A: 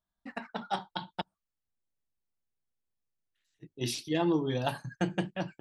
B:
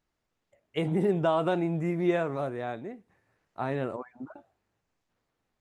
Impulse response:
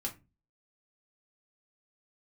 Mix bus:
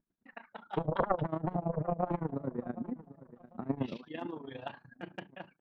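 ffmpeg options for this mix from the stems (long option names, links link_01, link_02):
-filter_complex "[0:a]lowpass=frequency=3000:width=0.5412,lowpass=frequency=3000:width=1.3066,asoftclip=type=hard:threshold=-19dB,volume=-5.5dB,asplit=2[link_01][link_02];[link_02]volume=-19dB[link_03];[1:a]firequalizer=gain_entry='entry(110,0);entry(190,13);entry(330,0);entry(710,-17);entry(1600,-16);entry(2400,-29)':delay=0.05:min_phase=1,aeval=exprs='0.316*sin(PI/2*4.47*val(0)/0.316)':channel_layout=same,aeval=exprs='val(0)*pow(10,-19*(0.5-0.5*cos(2*PI*8.9*n/s))/20)':channel_layout=same,volume=-4dB,asplit=2[link_04][link_05];[link_05]volume=-17.5dB[link_06];[2:a]atrim=start_sample=2205[link_07];[link_03][link_07]afir=irnorm=-1:irlink=0[link_08];[link_06]aecho=0:1:756|1512|2268|3024:1|0.29|0.0841|0.0244[link_09];[link_01][link_04][link_08][link_09]amix=inputs=4:normalize=0,lowshelf=frequency=330:gain=-12,tremolo=f=27:d=0.75"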